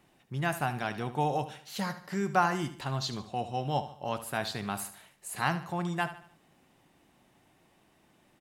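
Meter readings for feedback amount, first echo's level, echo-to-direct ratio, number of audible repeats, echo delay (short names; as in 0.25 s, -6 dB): 41%, -13.0 dB, -12.0 dB, 3, 74 ms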